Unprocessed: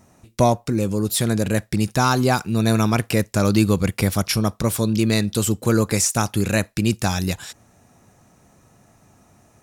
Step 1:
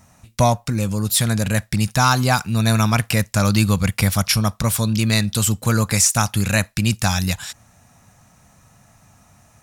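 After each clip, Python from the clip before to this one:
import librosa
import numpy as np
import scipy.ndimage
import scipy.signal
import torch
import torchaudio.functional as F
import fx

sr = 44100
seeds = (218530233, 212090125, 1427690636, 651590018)

y = fx.peak_eq(x, sr, hz=370.0, db=-14.0, octaves=1.1)
y = y * 10.0 ** (4.5 / 20.0)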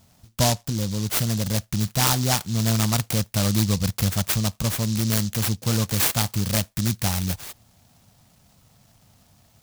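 y = fx.noise_mod_delay(x, sr, seeds[0], noise_hz=5000.0, depth_ms=0.18)
y = y * 10.0 ** (-4.5 / 20.0)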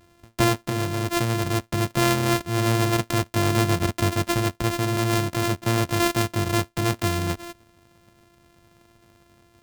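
y = np.r_[np.sort(x[:len(x) // 128 * 128].reshape(-1, 128), axis=1).ravel(), x[len(x) // 128 * 128:]]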